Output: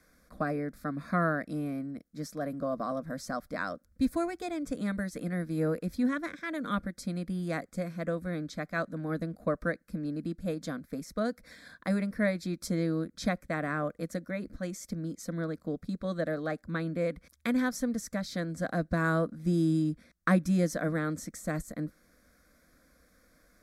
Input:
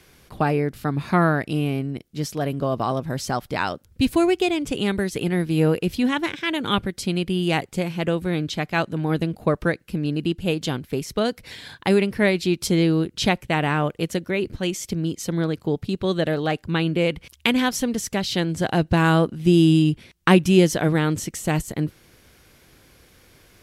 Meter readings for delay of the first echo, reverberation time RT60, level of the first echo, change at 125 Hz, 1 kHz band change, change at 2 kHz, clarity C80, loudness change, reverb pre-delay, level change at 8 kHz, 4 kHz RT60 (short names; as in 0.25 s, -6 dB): none, none, none, -11.0 dB, -11.0 dB, -9.5 dB, none, -10.5 dB, none, -12.0 dB, none